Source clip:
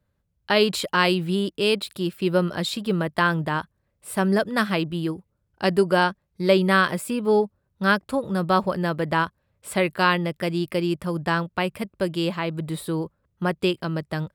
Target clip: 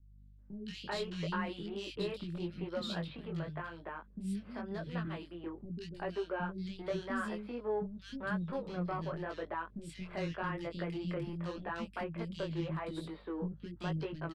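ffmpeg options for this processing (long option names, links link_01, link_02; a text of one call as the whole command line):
ffmpeg -i in.wav -filter_complex "[0:a]acompressor=threshold=-26dB:ratio=6,highpass=frequency=110:width=0.5412,highpass=frequency=110:width=1.3066,aeval=exprs='val(0)+0.00224*(sin(2*PI*50*n/s)+sin(2*PI*2*50*n/s)/2+sin(2*PI*3*50*n/s)/3+sin(2*PI*4*50*n/s)/4+sin(2*PI*5*50*n/s)/5)':channel_layout=same,lowpass=4100,asettb=1/sr,asplit=3[link_01][link_02][link_03];[link_01]atrim=end=2.814[link_04];[link_02]atrim=start=2.81:end=5.05,asetpts=PTS-STARTPTS,afade=type=in:duration=0.004:curve=qsin,afade=type=out:start_time=2.236:duration=0.004:curve=qsin,acrossover=split=220[link_05][link_06];[link_06]acompressor=threshold=-36dB:ratio=2[link_07];[link_05][link_07]amix=inputs=2:normalize=0[link_08];[link_03]atrim=start=5.046[link_09];[link_04][link_08]acrossfade=duration=0.004:curve1=hsin:curve2=qsin[link_10];[link_10][link_09]acrossfade=duration=0.004:curve1=qsin:curve2=hsin,asoftclip=type=tanh:threshold=-21.5dB,flanger=delay=17.5:depth=6.9:speed=0.87,acrossover=split=280|2600[link_11][link_12][link_13];[link_13]adelay=180[link_14];[link_12]adelay=390[link_15];[link_11][link_15][link_14]amix=inputs=3:normalize=0,volume=-2.5dB" out.wav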